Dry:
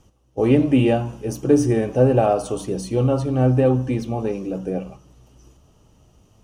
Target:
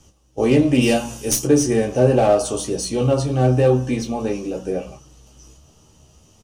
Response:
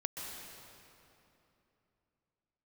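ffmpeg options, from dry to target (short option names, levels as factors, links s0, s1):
-filter_complex "[0:a]asplit=3[s0][s1][s2];[s0]afade=t=out:st=0.81:d=0.02[s3];[s1]aemphasis=mode=production:type=75kf,afade=t=in:st=0.81:d=0.02,afade=t=out:st=1.44:d=0.02[s4];[s2]afade=t=in:st=1.44:d=0.02[s5];[s3][s4][s5]amix=inputs=3:normalize=0,aecho=1:1:13|29:0.596|0.422,acrossover=split=420|870[s6][s7][s8];[s8]aeval=exprs='clip(val(0),-1,0.0316)':c=same[s9];[s6][s7][s9]amix=inputs=3:normalize=0,equalizer=f=6400:w=0.56:g=9.5"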